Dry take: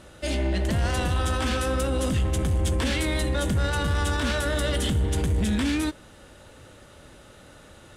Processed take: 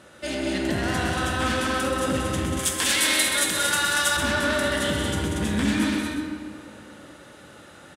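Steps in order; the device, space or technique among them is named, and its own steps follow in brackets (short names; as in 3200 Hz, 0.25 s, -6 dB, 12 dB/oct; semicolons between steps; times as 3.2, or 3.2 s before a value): stadium PA (HPF 130 Hz 12 dB/oct; bell 1600 Hz +4 dB 0.77 oct; loudspeakers at several distances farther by 64 m -6 dB, 80 m -4 dB; reverb RT60 2.5 s, pre-delay 16 ms, DRR 4 dB); 2.59–4.17 tilt +4 dB/oct; echo 0.129 s -8 dB; gain -1.5 dB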